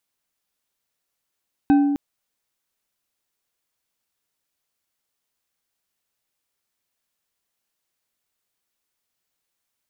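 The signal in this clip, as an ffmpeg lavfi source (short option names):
-f lavfi -i "aevalsrc='0.299*pow(10,-3*t/1.53)*sin(2*PI*285*t)+0.0944*pow(10,-3*t/0.752)*sin(2*PI*785.7*t)+0.0299*pow(10,-3*t/0.47)*sin(2*PI*1540.1*t)+0.00944*pow(10,-3*t/0.33)*sin(2*PI*2545.9*t)+0.00299*pow(10,-3*t/0.25)*sin(2*PI*3801.9*t)':d=0.26:s=44100"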